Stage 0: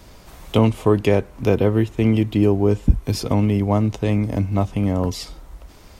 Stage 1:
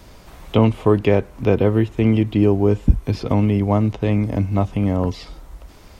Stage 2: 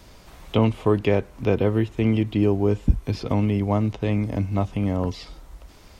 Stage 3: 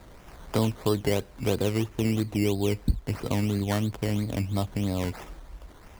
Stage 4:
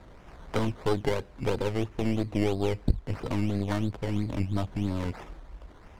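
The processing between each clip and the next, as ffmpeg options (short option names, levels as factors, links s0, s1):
-filter_complex "[0:a]acrossover=split=4000[s0][s1];[s1]acompressor=threshold=0.002:ratio=4:attack=1:release=60[s2];[s0][s2]amix=inputs=2:normalize=0,volume=1.12"
-af "equalizer=f=4800:t=o:w=2.5:g=3,volume=0.596"
-filter_complex "[0:a]asplit=2[s0][s1];[s1]acompressor=threshold=0.0447:ratio=6,volume=1.26[s2];[s0][s2]amix=inputs=2:normalize=0,acrusher=samples=14:mix=1:aa=0.000001:lfo=1:lforange=8.4:lforate=3,volume=0.398"
-af "aemphasis=mode=reproduction:type=50fm,aeval=exprs='0.282*(cos(1*acos(clip(val(0)/0.282,-1,1)))-cos(1*PI/2))+0.0708*(cos(4*acos(clip(val(0)/0.282,-1,1)))-cos(4*PI/2))':c=same,volume=0.841"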